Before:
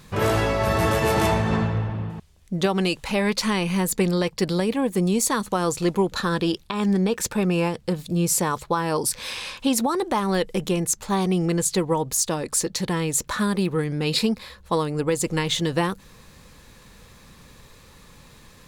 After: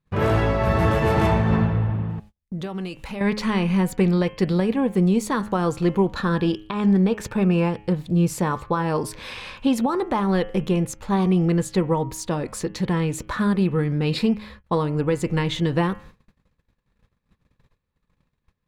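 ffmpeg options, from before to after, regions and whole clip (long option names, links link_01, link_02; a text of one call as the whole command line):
ffmpeg -i in.wav -filter_complex "[0:a]asettb=1/sr,asplit=3[link_01][link_02][link_03];[link_01]atrim=end=2.184[link_04];[link_02]atrim=start=2.18:end=3.21,asetpts=PTS-STARTPTS,afade=type=in:duration=0.004:curve=qsin,afade=type=out:start_time=1.026:duration=0.004:curve=qsin,highshelf=frequency=7400:gain=10,acompressor=threshold=-33dB:ratio=2.5:attack=3.2:release=140:knee=1:detection=peak[link_05];[link_03]atrim=start=3.206[link_06];[link_04][link_05]acrossfade=duration=0.004:curve1=hsin:curve2=qsin[link_07];[link_07][link_06]acrossfade=duration=0.004:curve1=qsin:curve2=hsin,bandreject=frequency=105.6:width_type=h:width=4,bandreject=frequency=211.2:width_type=h:width=4,bandreject=frequency=316.8:width_type=h:width=4,bandreject=frequency=422.4:width_type=h:width=4,bandreject=frequency=528:width_type=h:width=4,bandreject=frequency=633.6:width_type=h:width=4,bandreject=frequency=739.2:width_type=h:width=4,bandreject=frequency=844.8:width_type=h:width=4,bandreject=frequency=950.4:width_type=h:width=4,bandreject=frequency=1056:width_type=h:width=4,bandreject=frequency=1161.6:width_type=h:width=4,bandreject=frequency=1267.2:width_type=h:width=4,bandreject=frequency=1372.8:width_type=h:width=4,bandreject=frequency=1478.4:width_type=h:width=4,bandreject=frequency=1584:width_type=h:width=4,bandreject=frequency=1689.6:width_type=h:width=4,bandreject=frequency=1795.2:width_type=h:width=4,bandreject=frequency=1900.8:width_type=h:width=4,bandreject=frequency=2006.4:width_type=h:width=4,bandreject=frequency=2112:width_type=h:width=4,bandreject=frequency=2217.6:width_type=h:width=4,bandreject=frequency=2323.2:width_type=h:width=4,bandreject=frequency=2428.8:width_type=h:width=4,bandreject=frequency=2534.4:width_type=h:width=4,bandreject=frequency=2640:width_type=h:width=4,bandreject=frequency=2745.6:width_type=h:width=4,bandreject=frequency=2851.2:width_type=h:width=4,bandreject=frequency=2956.8:width_type=h:width=4,bandreject=frequency=3062.4:width_type=h:width=4,bandreject=frequency=3168:width_type=h:width=4,bandreject=frequency=3273.6:width_type=h:width=4,agate=range=-33dB:threshold=-44dB:ratio=16:detection=peak,bass=frequency=250:gain=5,treble=frequency=4000:gain=-13" out.wav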